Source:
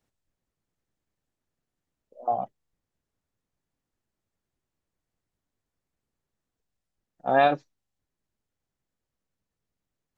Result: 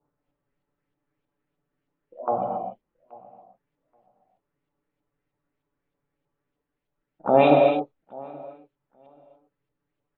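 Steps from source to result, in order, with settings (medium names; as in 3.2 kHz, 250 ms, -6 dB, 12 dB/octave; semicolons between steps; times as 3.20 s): band-stop 710 Hz, Q 12; touch-sensitive flanger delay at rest 7 ms, full sweep at -31 dBFS; peaking EQ 360 Hz +8 dB 2.2 oct; feedback delay 828 ms, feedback 18%, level -23.5 dB; LFO low-pass saw up 3.2 Hz 810–3300 Hz; gated-style reverb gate 310 ms flat, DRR 1 dB; trim +1 dB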